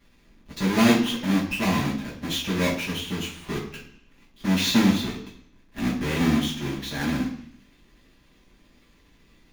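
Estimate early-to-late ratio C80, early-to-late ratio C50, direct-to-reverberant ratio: 10.5 dB, 7.5 dB, −7.0 dB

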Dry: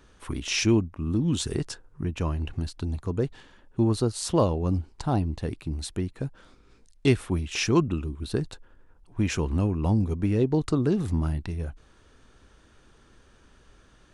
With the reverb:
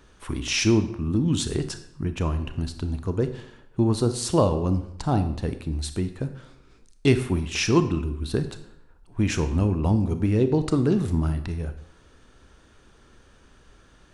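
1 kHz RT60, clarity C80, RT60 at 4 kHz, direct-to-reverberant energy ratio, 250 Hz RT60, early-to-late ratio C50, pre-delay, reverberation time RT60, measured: 0.80 s, 14.0 dB, 0.60 s, 9.5 dB, 0.80 s, 11.5 dB, 28 ms, 0.75 s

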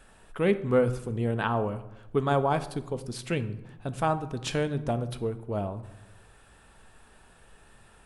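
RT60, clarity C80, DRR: 0.90 s, 17.0 dB, 10.0 dB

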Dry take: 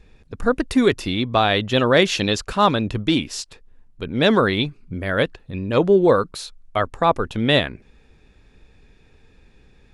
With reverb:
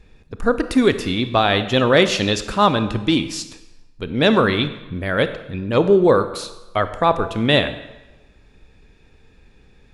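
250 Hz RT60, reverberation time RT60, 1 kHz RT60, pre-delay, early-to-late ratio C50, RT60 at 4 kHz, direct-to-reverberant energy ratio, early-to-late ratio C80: 0.90 s, 1.1 s, 1.1 s, 25 ms, 12.0 dB, 0.90 s, 10.5 dB, 13.5 dB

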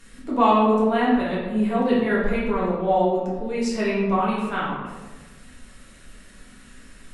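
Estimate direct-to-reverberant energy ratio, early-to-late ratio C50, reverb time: −7.5 dB, 1.0 dB, 1.3 s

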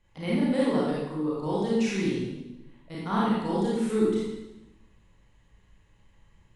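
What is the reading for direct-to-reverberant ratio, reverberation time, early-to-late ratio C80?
−7.5 dB, 1.0 s, 1.0 dB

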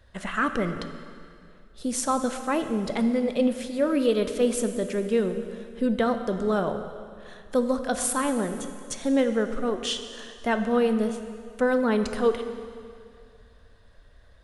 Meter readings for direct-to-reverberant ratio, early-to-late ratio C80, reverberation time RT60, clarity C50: 7.5 dB, 9.5 dB, 2.3 s, 9.0 dB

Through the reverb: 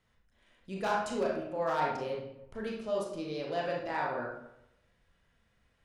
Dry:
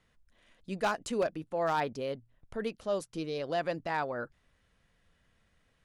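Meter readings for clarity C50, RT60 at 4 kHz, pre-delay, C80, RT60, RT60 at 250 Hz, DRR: 1.5 dB, 0.55 s, 26 ms, 5.5 dB, 0.85 s, 0.90 s, −2.5 dB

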